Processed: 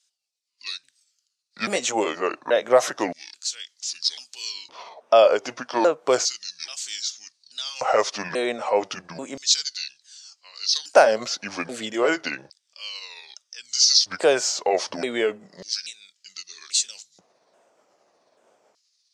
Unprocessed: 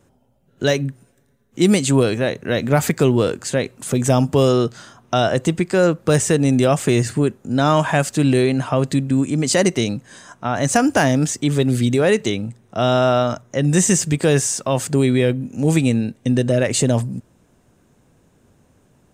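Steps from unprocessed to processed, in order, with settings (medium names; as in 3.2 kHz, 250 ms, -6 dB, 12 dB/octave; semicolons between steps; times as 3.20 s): sawtooth pitch modulation -8.5 st, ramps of 835 ms; band-pass 100–7700 Hz; LFO high-pass square 0.32 Hz 610–4400 Hz; trim -1 dB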